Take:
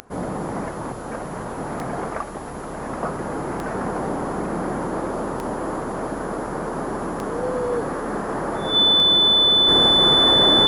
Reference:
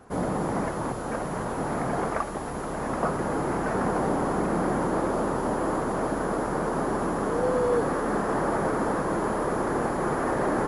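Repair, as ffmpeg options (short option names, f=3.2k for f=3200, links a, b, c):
-af "adeclick=t=4,bandreject=f=3.5k:w=30,asetnsamples=n=441:p=0,asendcmd='9.68 volume volume -5dB',volume=0dB"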